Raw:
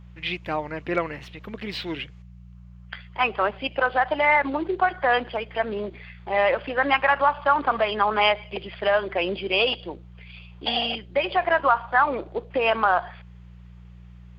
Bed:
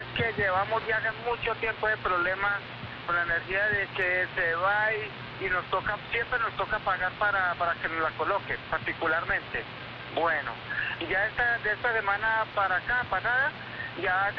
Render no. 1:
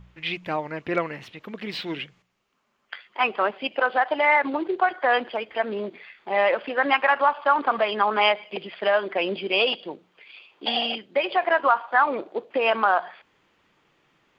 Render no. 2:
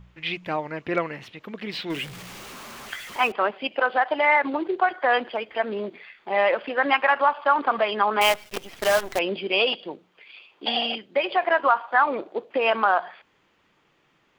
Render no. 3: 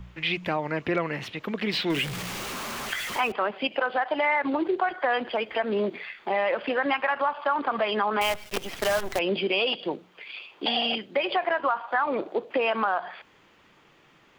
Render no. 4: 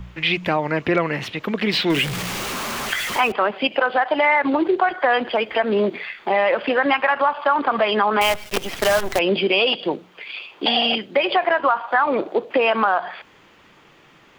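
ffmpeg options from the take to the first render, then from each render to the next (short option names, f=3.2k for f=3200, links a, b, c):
-af "bandreject=f=60:t=h:w=4,bandreject=f=120:t=h:w=4,bandreject=f=180:t=h:w=4"
-filter_complex "[0:a]asettb=1/sr,asplit=3[a][b][c];[a]atrim=end=1.904[d];[b]atrim=start=1.9:end=3.32,asetpts=PTS-STARTPTS,afade=t=in:d=0.004:c=qsin,afade=t=out:st=1.416:d=0.004:c=qsin,aeval=exprs='val(0)+0.5*0.0188*sgn(val(0))':c=same[e];[c]atrim=start=3.316[f];[d][e]acrossfade=d=0.004:c1=hsin:c2=qsin[g];[g][f]acrossfade=d=0.004:c1=qsin:c2=hsin,asettb=1/sr,asplit=3[h][i][j];[h]atrim=end=8.214[k];[i]atrim=start=8.21:end=9.19,asetpts=PTS-STARTPTS,afade=t=in:d=0.004:c=qsin,afade=t=out:st=0.976:d=0.004:c=qsin,acrusher=bits=5:dc=4:mix=0:aa=0.000001[l];[j]atrim=start=9.186[m];[k][l]acrossfade=d=0.004:c1=hsin:c2=qsin[n];[n][m]acrossfade=d=0.004:c1=qsin:c2=hsin"
-filter_complex "[0:a]acrossover=split=160[a][b];[b]acompressor=threshold=-29dB:ratio=2.5[c];[a][c]amix=inputs=2:normalize=0,asplit=2[d][e];[e]alimiter=level_in=2dB:limit=-24dB:level=0:latency=1,volume=-2dB,volume=1dB[f];[d][f]amix=inputs=2:normalize=0"
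-af "volume=7dB"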